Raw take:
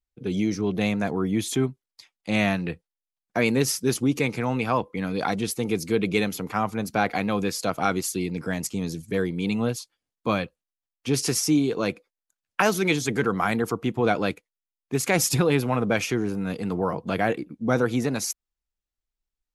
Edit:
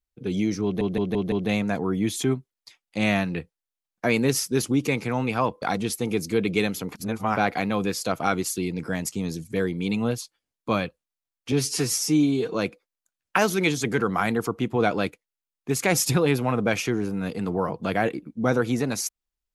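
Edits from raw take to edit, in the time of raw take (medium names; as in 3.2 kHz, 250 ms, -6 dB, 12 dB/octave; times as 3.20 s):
0.64 s: stutter 0.17 s, 5 plays
4.94–5.20 s: delete
6.53–6.95 s: reverse
11.10–11.78 s: stretch 1.5×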